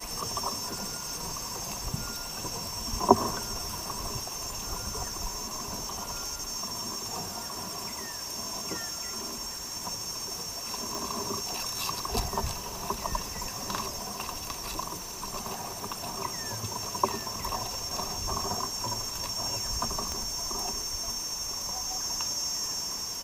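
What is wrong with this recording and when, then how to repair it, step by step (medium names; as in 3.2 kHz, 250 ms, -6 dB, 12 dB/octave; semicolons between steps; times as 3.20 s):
10.95 s: pop
20.12 s: pop -19 dBFS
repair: de-click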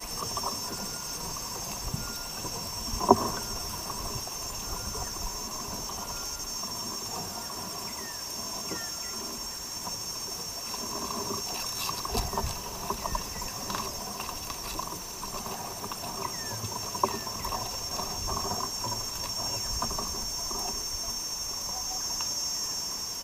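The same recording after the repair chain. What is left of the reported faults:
20.12 s: pop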